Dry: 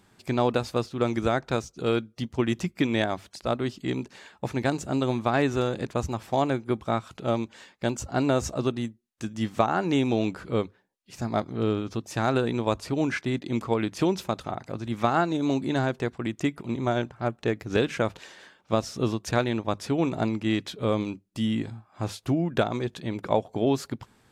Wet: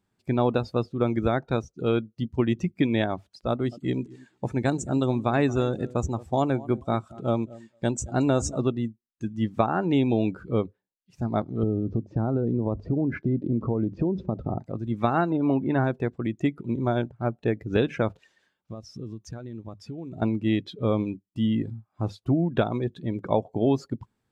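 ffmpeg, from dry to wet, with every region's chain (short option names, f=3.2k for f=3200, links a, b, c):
-filter_complex "[0:a]asettb=1/sr,asplit=3[a][b][c];[a]atrim=end=3.494[d];[b]atrim=start=3.49:end=8.61,asetpts=PTS-STARTPTS,afade=t=in:d=0.004:c=qsin,afade=t=out:st=5.116:d=0.004:c=qsin,equalizer=f=8.3k:t=o:w=0.97:g=8.5,aecho=1:1:225|450:0.126|0.0327,atrim=end_sample=225792[e];[c]atrim=start=8.606[f];[d][e]acrossfade=d=0.004:c1=hsin:c2=qsin[g];[g][f]acrossfade=d=0.004:c1=qsin:c2=hsin,asettb=1/sr,asplit=3[h][i][j];[h]atrim=end=11.634[k];[i]atrim=start=11.63:end=14.6,asetpts=PTS-STARTPTS,afade=t=in:d=0.004:c=qsin,afade=t=out:st=2.966:d=0.004:c=qsin,lowpass=f=5.6k:w=0.5412,lowpass=f=5.6k:w=1.3066,tiltshelf=f=1.1k:g=9,acompressor=threshold=-24dB:ratio=4:attack=3.2:release=140:knee=1:detection=peak[l];[j]atrim=start=14.596[m];[k][l]acrossfade=d=0.004:c1=hsin:c2=qsin[n];[n][m]acrossfade=d=0.004:c1=qsin:c2=hsin,asettb=1/sr,asplit=3[o][p][q];[o]atrim=end=15.304[r];[p]atrim=start=15.3:end=15.84,asetpts=PTS-STARTPTS,afade=t=in:d=0.004:c=qsin,afade=t=out:st=0.536:d=0.004:c=qsin,lowpass=f=3.1k:w=0.5412,lowpass=f=3.1k:w=1.3066,equalizer=f=1.1k:w=0.79:g=4[s];[q]atrim=start=15.836[t];[r][s]acrossfade=d=0.004:c1=hsin:c2=qsin[u];[u][t]acrossfade=d=0.004:c1=qsin:c2=hsin,asettb=1/sr,asplit=3[v][w][x];[v]atrim=end=18.134[y];[w]atrim=start=18.13:end=20.22,asetpts=PTS-STARTPTS,afade=t=in:d=0.004:c=qsin,afade=t=out:st=2.086:d=0.004:c=qsin,equalizer=f=510:w=0.33:g=-4,acompressor=threshold=-35dB:ratio=5:attack=3.2:release=140:knee=1:detection=peak[z];[x]atrim=start=20.216[aa];[y][z]acrossfade=d=0.004:c1=hsin:c2=qsin[ab];[ab][aa]acrossfade=d=0.004:c1=qsin:c2=hsin,afftdn=nr=17:nf=-37,lowshelf=f=420:g=5.5,volume=-2dB"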